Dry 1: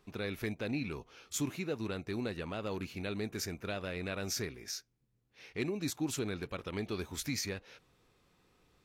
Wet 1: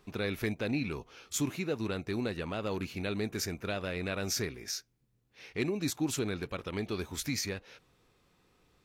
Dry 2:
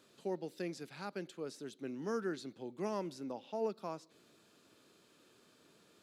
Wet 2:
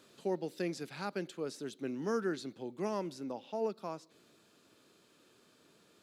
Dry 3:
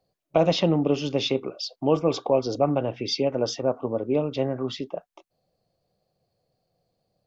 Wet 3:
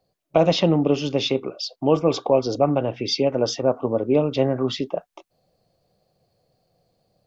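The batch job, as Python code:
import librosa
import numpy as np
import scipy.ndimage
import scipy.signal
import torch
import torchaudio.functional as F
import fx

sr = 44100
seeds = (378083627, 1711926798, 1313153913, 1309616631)

y = fx.rider(x, sr, range_db=4, speed_s=2.0)
y = y * 10.0 ** (3.0 / 20.0)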